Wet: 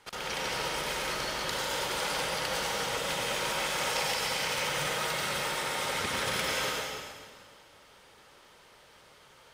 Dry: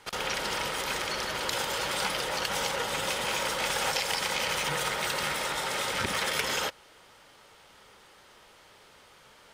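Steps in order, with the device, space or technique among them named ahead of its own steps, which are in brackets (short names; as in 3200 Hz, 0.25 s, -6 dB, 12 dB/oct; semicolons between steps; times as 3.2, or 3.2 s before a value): stairwell (reverb RT60 1.8 s, pre-delay 89 ms, DRR -2 dB); gain -5.5 dB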